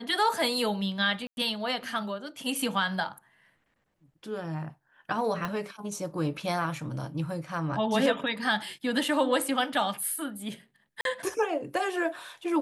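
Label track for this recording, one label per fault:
1.270000	1.370000	dropout 101 ms
5.450000	5.450000	pop -18 dBFS
11.010000	11.050000	dropout 42 ms

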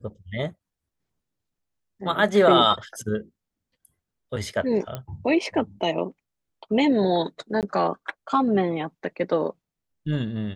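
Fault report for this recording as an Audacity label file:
4.950000	4.950000	pop -17 dBFS
7.610000	7.630000	dropout 18 ms

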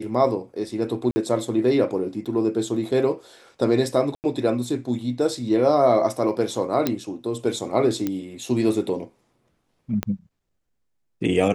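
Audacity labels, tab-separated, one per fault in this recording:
1.110000	1.160000	dropout 50 ms
2.250000	2.260000	dropout 7 ms
4.150000	4.240000	dropout 89 ms
6.870000	6.870000	pop -7 dBFS
8.070000	8.070000	pop -12 dBFS
10.030000	10.030000	pop -10 dBFS

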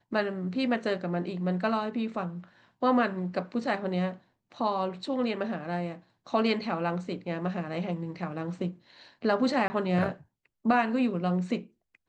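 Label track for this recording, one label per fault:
9.680000	9.700000	dropout 20 ms

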